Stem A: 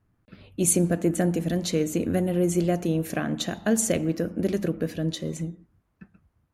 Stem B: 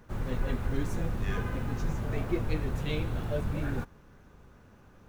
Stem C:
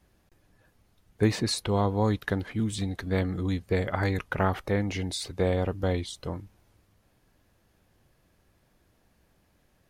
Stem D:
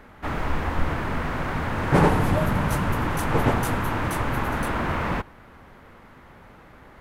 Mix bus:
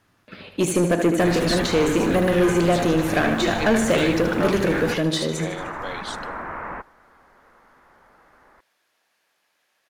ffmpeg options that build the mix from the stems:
-filter_complex "[0:a]deesser=0.8,volume=0dB,asplit=3[a][b][c];[b]volume=-9dB[d];[1:a]adelay=1100,volume=0dB[e];[2:a]highpass=f=1.3k:p=1,volume=-7.5dB,asplit=2[f][g];[g]volume=-24dB[h];[3:a]lowpass=f=1.9k:w=0.5412,lowpass=f=1.9k:w=1.3066,asubboost=boost=3:cutoff=57,adelay=1600,volume=-16dB[i];[c]apad=whole_len=379483[j];[i][j]sidechaincompress=threshold=-45dB:ratio=8:attack=16:release=107[k];[d][h]amix=inputs=2:normalize=0,aecho=0:1:76|152|228|304|380|456|532|608|684:1|0.58|0.336|0.195|0.113|0.0656|0.0381|0.0221|0.0128[l];[a][e][f][k][l]amix=inputs=5:normalize=0,asplit=2[m][n];[n]highpass=f=720:p=1,volume=20dB,asoftclip=type=tanh:threshold=-8.5dB[o];[m][o]amix=inputs=2:normalize=0,lowpass=f=4.7k:p=1,volume=-6dB"

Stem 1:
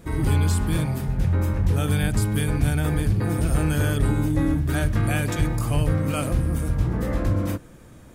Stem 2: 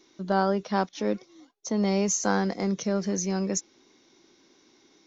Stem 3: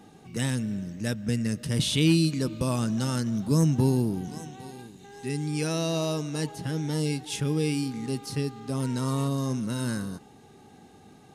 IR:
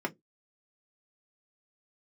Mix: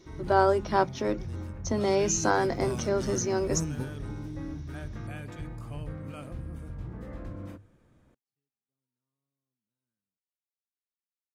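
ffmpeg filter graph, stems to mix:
-filter_complex "[0:a]aemphasis=mode=reproduction:type=50kf,bandreject=f=50:t=h:w=6,bandreject=f=100:t=h:w=6,volume=-15.5dB[a];[1:a]volume=-2dB,asplit=3[b][c][d];[c]volume=-10.5dB[e];[2:a]aeval=exprs='val(0)*gte(abs(val(0)),0.00631)':c=same,volume=-10.5dB,afade=t=in:st=1.92:d=0.63:silence=0.237137[f];[d]apad=whole_len=500210[g];[f][g]sidechaingate=range=-53dB:threshold=-58dB:ratio=16:detection=peak[h];[3:a]atrim=start_sample=2205[i];[e][i]afir=irnorm=-1:irlink=0[j];[a][b][h][j]amix=inputs=4:normalize=0"

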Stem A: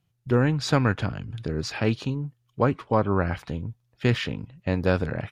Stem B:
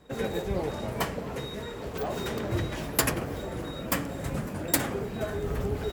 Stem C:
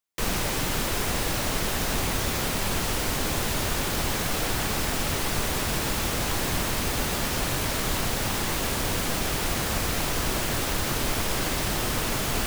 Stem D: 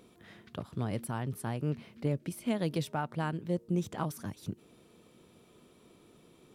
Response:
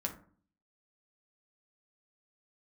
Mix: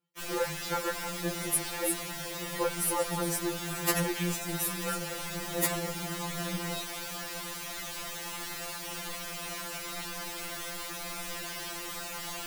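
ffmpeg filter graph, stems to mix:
-filter_complex "[0:a]highpass=230,highshelf=f=3.4k:g=-8.5,aecho=1:1:2.2:0.65,volume=-4.5dB,asplit=2[a][b];[1:a]adelay=900,volume=-0.5dB[c];[2:a]lowshelf=f=340:g=-11.5,volume=-9dB,asplit=2[d][e];[e]volume=-11dB[f];[3:a]aexciter=amount=15.6:drive=6.7:freq=5.5k,adelay=500,volume=-8dB[g];[b]apad=whole_len=300822[h];[c][h]sidechaincompress=threshold=-48dB:ratio=8:attack=16:release=153[i];[4:a]atrim=start_sample=2205[j];[f][j]afir=irnorm=-1:irlink=0[k];[a][i][d][g][k]amix=inputs=5:normalize=0,afftfilt=real='re*2.83*eq(mod(b,8),0)':imag='im*2.83*eq(mod(b,8),0)':win_size=2048:overlap=0.75"

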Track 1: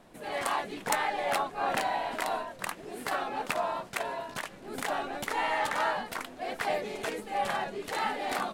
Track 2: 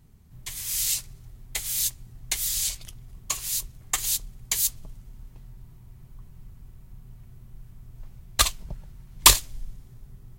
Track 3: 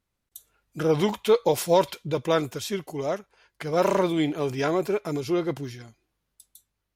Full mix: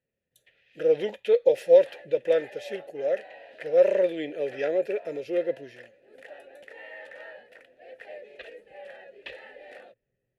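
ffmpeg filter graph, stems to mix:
-filter_complex "[0:a]adelay=1400,volume=-2dB[a];[1:a]lowpass=f=3.3k:w=0.5412,lowpass=f=3.3k:w=1.3066,acontrast=51,volume=-11.5dB[b];[2:a]dynaudnorm=f=140:g=3:m=5.5dB,volume=2.5dB[c];[a][b][c]amix=inputs=3:normalize=0,asplit=3[d][e][f];[d]bandpass=f=530:t=q:w=8,volume=0dB[g];[e]bandpass=f=1.84k:t=q:w=8,volume=-6dB[h];[f]bandpass=f=2.48k:t=q:w=8,volume=-9dB[i];[g][h][i]amix=inputs=3:normalize=0,equalizer=f=11k:t=o:w=0.42:g=9"

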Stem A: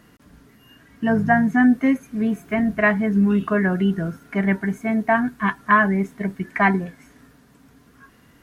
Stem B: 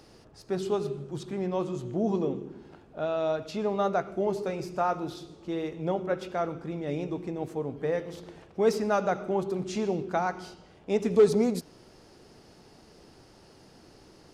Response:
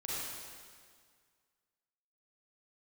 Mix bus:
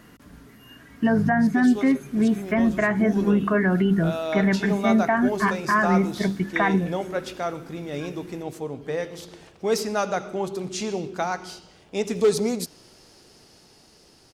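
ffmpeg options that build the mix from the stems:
-filter_complex "[0:a]acrossover=split=2900[a][b];[b]acompressor=threshold=-49dB:ratio=4:attack=1:release=60[c];[a][c]amix=inputs=2:normalize=0,bandreject=f=50:t=h:w=6,bandreject=f=100:t=h:w=6,bandreject=f=150:t=h:w=6,bandreject=f=200:t=h:w=6,alimiter=limit=-15dB:level=0:latency=1:release=116,volume=3dB[d];[1:a]highshelf=f=2.5k:g=11.5,dynaudnorm=f=560:g=9:m=6dB,adelay=1050,volume=-5.5dB[e];[d][e]amix=inputs=2:normalize=0"

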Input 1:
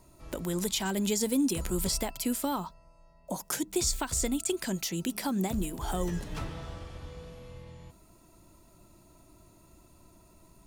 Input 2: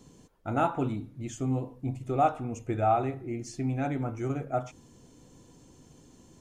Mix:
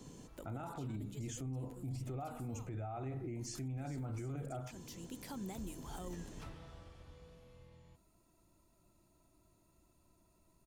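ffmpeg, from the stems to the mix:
-filter_complex "[0:a]adelay=50,volume=-13dB[a];[1:a]alimiter=limit=-23dB:level=0:latency=1:release=214,acrossover=split=160[b][c];[c]acompressor=threshold=-41dB:ratio=4[d];[b][d]amix=inputs=2:normalize=0,volume=1.5dB,asplit=2[e][f];[f]apad=whole_len=472467[g];[a][g]sidechaincompress=threshold=-45dB:ratio=12:attack=16:release=906[h];[h][e]amix=inputs=2:normalize=0,alimiter=level_in=11.5dB:limit=-24dB:level=0:latency=1:release=16,volume=-11.5dB"

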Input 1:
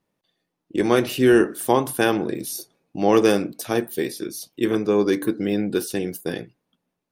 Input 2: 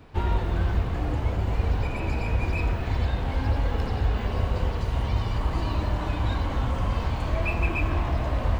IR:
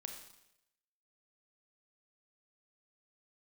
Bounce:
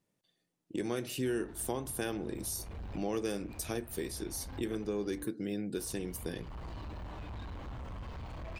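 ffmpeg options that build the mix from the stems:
-filter_complex "[0:a]equalizer=f=125:t=o:w=1:g=4,equalizer=f=1k:t=o:w=1:g=-4,equalizer=f=8k:t=o:w=1:g=7,volume=-5.5dB[a];[1:a]asoftclip=type=tanh:threshold=-27dB,adelay=1100,volume=-12dB,asplit=3[b][c][d];[b]atrim=end=5.24,asetpts=PTS-STARTPTS,afade=t=out:st=5.236:d=0.004:c=hsin[e];[c]atrim=start=5.24:end=5.77,asetpts=PTS-STARTPTS,volume=0[f];[d]atrim=start=5.77,asetpts=PTS-STARTPTS,afade=t=in:d=0.004:c=hsin[g];[e][f][g]concat=n=3:v=0:a=1[h];[a][h]amix=inputs=2:normalize=0,acompressor=threshold=-37dB:ratio=2.5"

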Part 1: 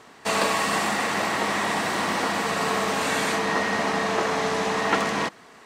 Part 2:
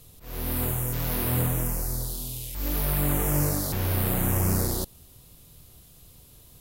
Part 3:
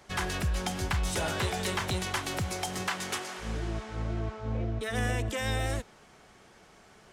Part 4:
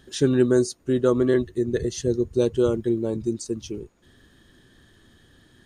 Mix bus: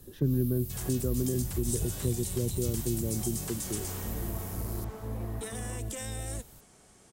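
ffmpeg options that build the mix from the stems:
-filter_complex "[0:a]lowpass=1.6k,acompressor=threshold=-28dB:ratio=6,adelay=500,volume=-12.5dB[a];[1:a]acrossover=split=400|7800[b][c][d];[b]acompressor=threshold=-38dB:ratio=4[e];[c]acompressor=threshold=-47dB:ratio=4[f];[d]acompressor=threshold=-40dB:ratio=4[g];[e][f][g]amix=inputs=3:normalize=0,volume=-2dB[h];[2:a]alimiter=level_in=3.5dB:limit=-24dB:level=0:latency=1:release=20,volume=-3.5dB,equalizer=f=8.9k:t=o:w=0.94:g=12.5,adelay=600,volume=-0.5dB[i];[3:a]lowpass=1.3k,volume=1dB[j];[a][h][i][j]amix=inputs=4:normalize=0,equalizer=f=1.8k:w=0.37:g=-8,acrossover=split=190|3000[k][l][m];[l]acompressor=threshold=-35dB:ratio=6[n];[k][n][m]amix=inputs=3:normalize=0"

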